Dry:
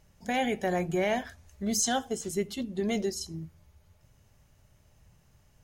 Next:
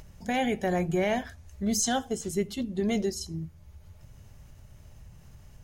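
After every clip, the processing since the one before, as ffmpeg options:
-af "lowshelf=f=170:g=7.5,acompressor=mode=upward:threshold=-41dB:ratio=2.5"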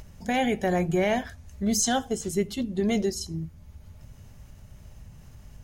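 -af "aeval=exprs='val(0)+0.00178*(sin(2*PI*50*n/s)+sin(2*PI*2*50*n/s)/2+sin(2*PI*3*50*n/s)/3+sin(2*PI*4*50*n/s)/4+sin(2*PI*5*50*n/s)/5)':c=same,volume=2.5dB"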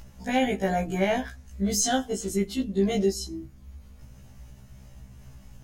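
-af "afftfilt=real='re*1.73*eq(mod(b,3),0)':imag='im*1.73*eq(mod(b,3),0)':win_size=2048:overlap=0.75,volume=2.5dB"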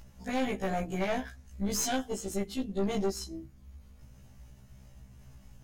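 -af "aeval=exprs='(tanh(12.6*val(0)+0.65)-tanh(0.65))/12.6':c=same,volume=-2dB"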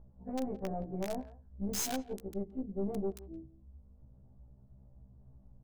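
-filter_complex "[0:a]acrossover=split=890[a][b];[b]acrusher=bits=4:mix=0:aa=0.000001[c];[a][c]amix=inputs=2:normalize=0,asplit=2[d][e];[e]adelay=170,highpass=300,lowpass=3.4k,asoftclip=type=hard:threshold=-25dB,volume=-19dB[f];[d][f]amix=inputs=2:normalize=0,volume=-4.5dB"

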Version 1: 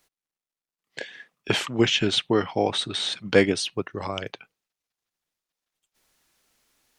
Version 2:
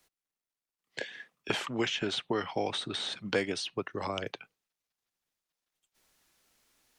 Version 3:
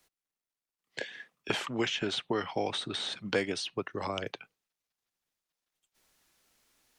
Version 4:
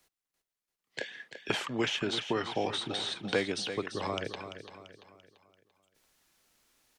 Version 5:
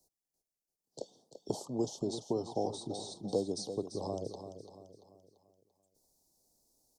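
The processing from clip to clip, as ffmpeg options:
-filter_complex "[0:a]acrossover=split=170|530|1600|5500[a][b][c][d][e];[a]acompressor=threshold=-45dB:ratio=4[f];[b]acompressor=threshold=-32dB:ratio=4[g];[c]acompressor=threshold=-32dB:ratio=4[h];[d]acompressor=threshold=-34dB:ratio=4[i];[e]acompressor=threshold=-46dB:ratio=4[j];[f][g][h][i][j]amix=inputs=5:normalize=0,volume=-2dB"
-af anull
-af "aecho=1:1:340|680|1020|1360|1700:0.316|0.136|0.0585|0.0251|0.0108"
-af "asuperstop=centerf=2000:order=8:qfactor=0.51,volume=-1.5dB"

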